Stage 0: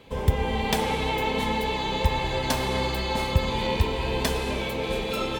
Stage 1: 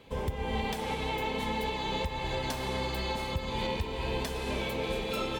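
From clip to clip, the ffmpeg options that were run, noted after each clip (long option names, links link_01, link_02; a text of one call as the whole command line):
ffmpeg -i in.wav -af "alimiter=limit=-17.5dB:level=0:latency=1:release=298,volume=-4dB" out.wav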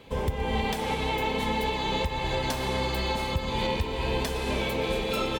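ffmpeg -i in.wav -af "aecho=1:1:121:0.0891,volume=4.5dB" out.wav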